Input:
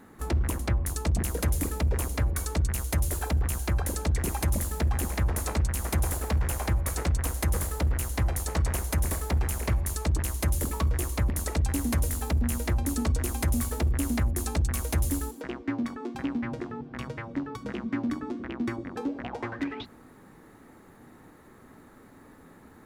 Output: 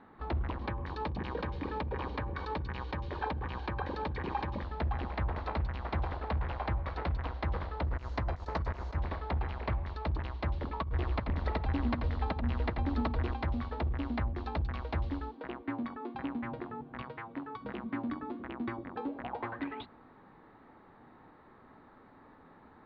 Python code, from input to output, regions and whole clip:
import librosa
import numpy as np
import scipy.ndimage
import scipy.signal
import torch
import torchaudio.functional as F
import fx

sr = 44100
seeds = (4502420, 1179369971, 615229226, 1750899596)

y = fx.chain(x, sr, fx.low_shelf(hz=120.0, db=-6.0),
    fx.notch_comb(f0_hz=680.0),
    fx.env_flatten(amount_pct=70), at=(0.61, 4.63))
y = fx.chain(y, sr, fx.high_shelf_res(hz=5100.0, db=13.5, q=1.5),
    fx.notch(hz=790.0, q=14.0),
    fx.over_compress(threshold_db=-25.0, ratio=-1.0), at=(7.85, 8.96))
y = fx.chain(y, sr, fx.low_shelf(hz=160.0, db=4.5),
    fx.over_compress(threshold_db=-23.0, ratio=-0.5),
    fx.echo_single(ms=87, db=-7.5), at=(10.82, 13.34))
y = fx.chain(y, sr, fx.low_shelf(hz=170.0, db=-9.0),
    fx.notch(hz=580.0, q=7.9),
    fx.doppler_dist(depth_ms=0.15), at=(17.02, 17.61))
y = scipy.signal.sosfilt(scipy.signal.butter(8, 4200.0, 'lowpass', fs=sr, output='sos'), y)
y = fx.peak_eq(y, sr, hz=910.0, db=8.0, octaves=1.3)
y = F.gain(torch.from_numpy(y), -7.5).numpy()